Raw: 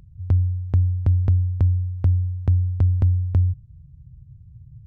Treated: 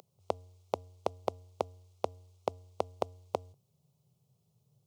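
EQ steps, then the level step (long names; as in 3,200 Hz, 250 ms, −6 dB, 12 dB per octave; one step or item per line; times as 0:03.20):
high-pass filter 340 Hz 24 dB per octave
phaser with its sweep stopped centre 700 Hz, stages 4
+12.0 dB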